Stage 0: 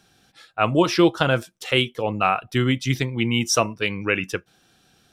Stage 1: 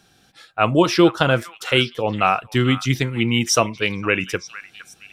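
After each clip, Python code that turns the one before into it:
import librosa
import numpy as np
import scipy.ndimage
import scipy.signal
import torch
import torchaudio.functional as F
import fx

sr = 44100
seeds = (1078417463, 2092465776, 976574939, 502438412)

y = fx.echo_stepped(x, sr, ms=461, hz=1500.0, octaves=1.4, feedback_pct=70, wet_db=-11.5)
y = y * 10.0 ** (2.5 / 20.0)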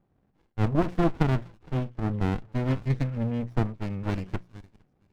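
y = fx.filter_lfo_lowpass(x, sr, shape='saw_up', hz=0.63, low_hz=700.0, high_hz=1900.0, q=0.75)
y = fx.hum_notches(y, sr, base_hz=60, count=3)
y = fx.running_max(y, sr, window=65)
y = y * 10.0 ** (-6.0 / 20.0)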